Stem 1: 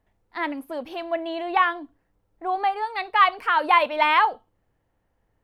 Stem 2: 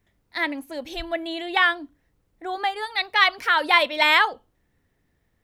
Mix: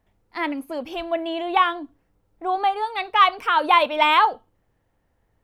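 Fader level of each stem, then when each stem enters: +2.0, -9.5 dB; 0.00, 0.00 s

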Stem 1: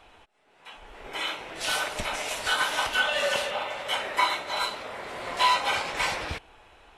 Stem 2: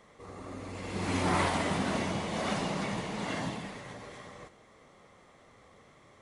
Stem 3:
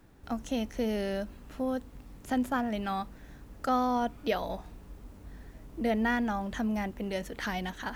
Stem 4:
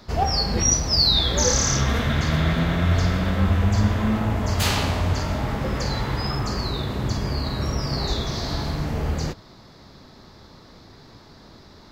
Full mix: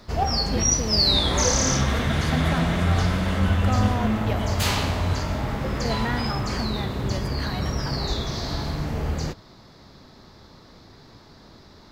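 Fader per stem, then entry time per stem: -13.0, -1.0, -1.0, -1.5 dB; 0.50, 0.00, 0.00, 0.00 s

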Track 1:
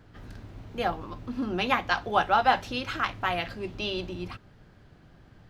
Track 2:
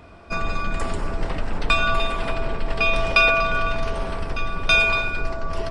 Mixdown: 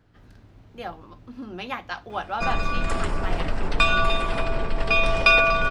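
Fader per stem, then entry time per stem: -6.5, 0.0 dB; 0.00, 2.10 s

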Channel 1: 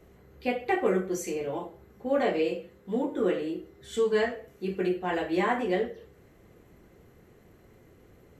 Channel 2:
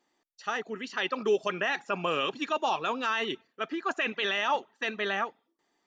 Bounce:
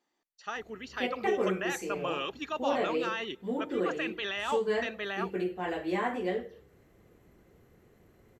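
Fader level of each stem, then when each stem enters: -4.5, -5.5 dB; 0.55, 0.00 s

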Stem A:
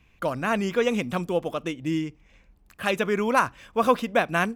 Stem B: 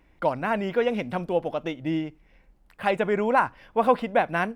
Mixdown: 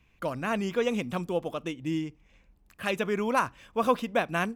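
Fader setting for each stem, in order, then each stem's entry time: -4.5, -19.5 dB; 0.00, 0.00 s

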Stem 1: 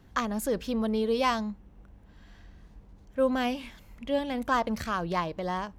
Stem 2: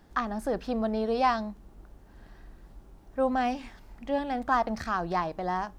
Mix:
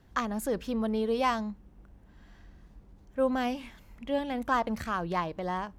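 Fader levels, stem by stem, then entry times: -3.5, -13.0 dB; 0.00, 0.00 s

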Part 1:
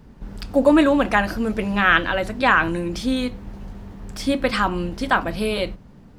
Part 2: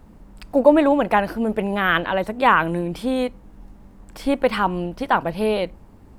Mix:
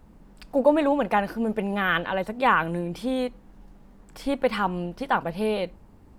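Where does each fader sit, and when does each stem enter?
-18.0, -5.0 dB; 0.00, 0.00 s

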